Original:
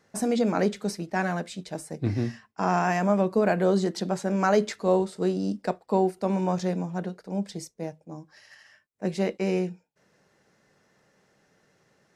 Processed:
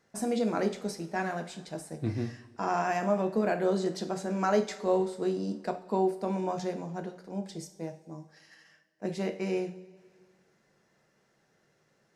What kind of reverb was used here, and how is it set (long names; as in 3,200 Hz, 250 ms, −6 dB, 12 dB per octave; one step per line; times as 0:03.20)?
coupled-rooms reverb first 0.4 s, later 2.1 s, from −17 dB, DRR 6.5 dB
level −5.5 dB